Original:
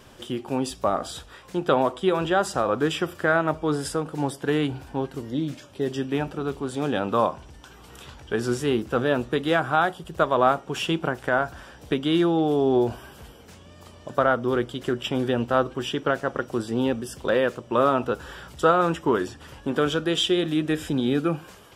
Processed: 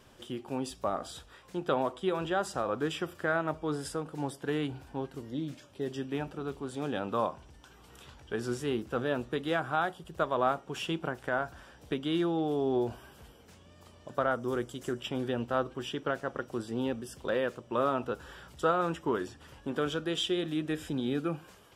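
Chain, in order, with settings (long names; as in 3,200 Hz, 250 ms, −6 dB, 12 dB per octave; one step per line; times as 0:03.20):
0:14.31–0:15.00: high shelf with overshoot 5,100 Hz +7.5 dB, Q 1.5
level −8.5 dB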